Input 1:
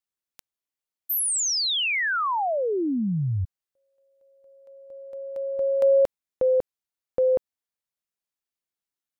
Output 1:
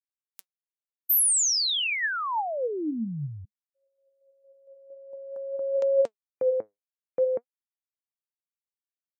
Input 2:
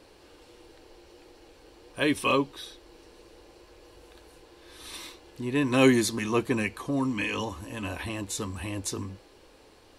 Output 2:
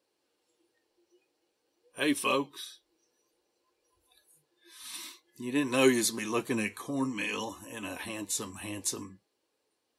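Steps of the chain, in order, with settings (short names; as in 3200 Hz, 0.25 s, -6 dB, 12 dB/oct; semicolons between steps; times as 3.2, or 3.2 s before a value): HPF 160 Hz 12 dB/oct; spectral noise reduction 20 dB; high shelf 5600 Hz +9.5 dB; flange 0.52 Hz, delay 1.7 ms, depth 8.3 ms, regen +67%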